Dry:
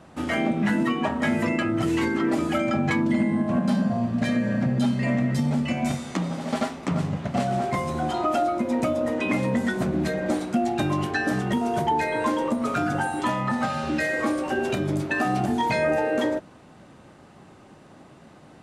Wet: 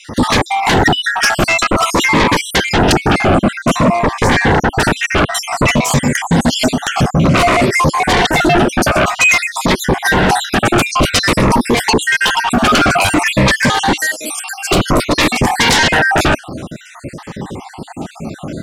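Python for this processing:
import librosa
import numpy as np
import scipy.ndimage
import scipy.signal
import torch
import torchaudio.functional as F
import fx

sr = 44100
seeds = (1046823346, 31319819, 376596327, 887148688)

p1 = fx.spec_dropout(x, sr, seeds[0], share_pct=59)
p2 = fx.low_shelf(p1, sr, hz=210.0, db=11.0, at=(4.0, 5.76))
p3 = 10.0 ** (-19.5 / 20.0) * np.tanh(p2 / 10.0 ** (-19.5 / 20.0))
p4 = p2 + F.gain(torch.from_numpy(p3), -4.0).numpy()
p5 = fx.differentiator(p4, sr, at=(13.96, 14.71))
p6 = fx.fold_sine(p5, sr, drive_db=17, ceiling_db=-7.0)
p7 = fx.notch_cascade(p6, sr, direction='falling', hz=0.53)
y = F.gain(torch.from_numpy(p7), 1.5).numpy()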